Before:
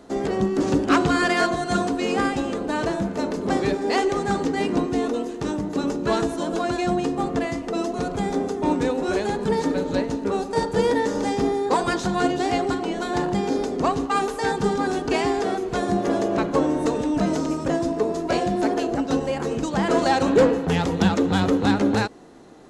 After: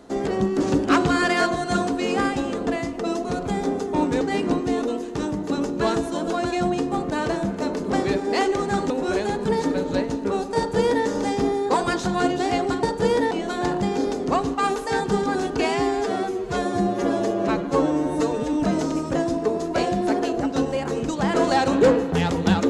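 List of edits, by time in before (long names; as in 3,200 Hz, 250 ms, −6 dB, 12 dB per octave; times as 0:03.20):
0:02.67–0:04.47: swap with 0:07.36–0:08.90
0:10.57–0:11.05: duplicate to 0:12.83
0:15.13–0:17.08: time-stretch 1.5×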